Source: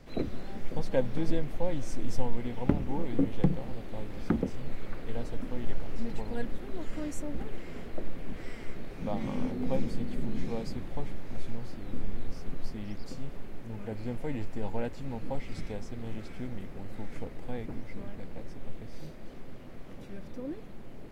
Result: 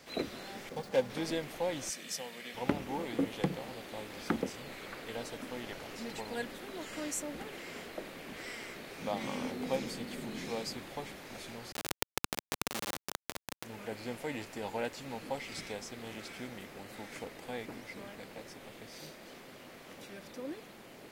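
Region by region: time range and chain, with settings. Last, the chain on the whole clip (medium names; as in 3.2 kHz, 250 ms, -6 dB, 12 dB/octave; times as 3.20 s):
0.69–1.10 s: median filter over 15 samples + comb of notches 320 Hz
1.89–2.55 s: steep high-pass 160 Hz 48 dB/octave + high-order bell 530 Hz -8.5 dB 2.7 oct + comb 1.7 ms, depth 37%
11.72–13.64 s: square wave that keeps the level + high-pass 130 Hz 6 dB/octave
whole clip: high-pass 570 Hz 6 dB/octave; treble shelf 2.4 kHz +8 dB; trim +2.5 dB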